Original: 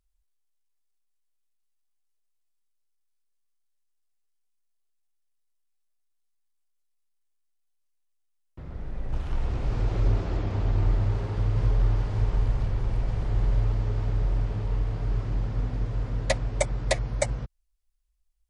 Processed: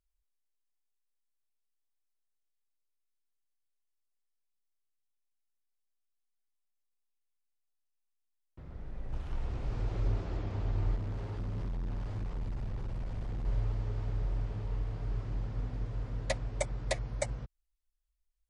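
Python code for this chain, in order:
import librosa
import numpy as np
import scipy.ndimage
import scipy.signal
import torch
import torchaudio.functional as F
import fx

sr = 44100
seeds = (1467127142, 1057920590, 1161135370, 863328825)

y = fx.clip_hard(x, sr, threshold_db=-25.0, at=(10.96, 13.46))
y = y * 10.0 ** (-8.0 / 20.0)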